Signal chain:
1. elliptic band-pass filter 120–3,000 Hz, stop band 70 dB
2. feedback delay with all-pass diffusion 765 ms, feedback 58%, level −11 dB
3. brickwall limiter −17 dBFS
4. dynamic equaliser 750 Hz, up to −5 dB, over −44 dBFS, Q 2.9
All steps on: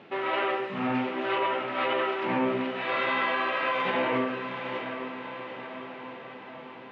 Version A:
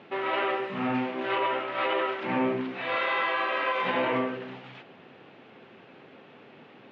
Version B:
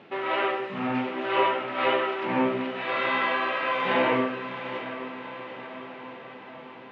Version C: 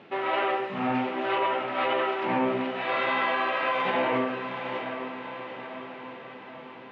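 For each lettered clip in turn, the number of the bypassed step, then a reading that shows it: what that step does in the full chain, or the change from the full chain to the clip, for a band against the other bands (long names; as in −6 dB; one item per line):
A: 2, change in momentary loudness spread −9 LU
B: 3, change in crest factor +6.5 dB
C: 4, 1 kHz band +2.0 dB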